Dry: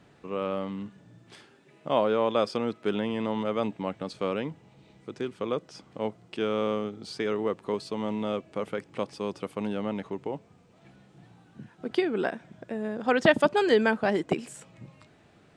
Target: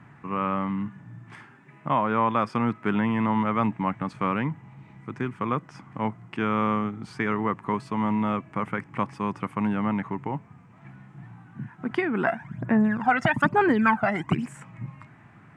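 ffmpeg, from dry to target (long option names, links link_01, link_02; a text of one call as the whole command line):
ffmpeg -i in.wav -filter_complex "[0:a]asplit=3[link_01][link_02][link_03];[link_01]afade=type=out:start_time=12.26:duration=0.02[link_04];[link_02]aphaser=in_gain=1:out_gain=1:delay=1.5:decay=0.73:speed=1.1:type=sinusoidal,afade=type=in:start_time=12.26:duration=0.02,afade=type=out:start_time=14.45:duration=0.02[link_05];[link_03]afade=type=in:start_time=14.45:duration=0.02[link_06];[link_04][link_05][link_06]amix=inputs=3:normalize=0,highshelf=frequency=5100:gain=-4,alimiter=limit=-15.5dB:level=0:latency=1:release=236,equalizer=frequency=125:width_type=o:width=1:gain=12,equalizer=frequency=250:width_type=o:width=1:gain=5,equalizer=frequency=500:width_type=o:width=1:gain=-9,equalizer=frequency=1000:width_type=o:width=1:gain=11,equalizer=frequency=2000:width_type=o:width=1:gain=10,equalizer=frequency=4000:width_type=o:width=1:gain=-11" out.wav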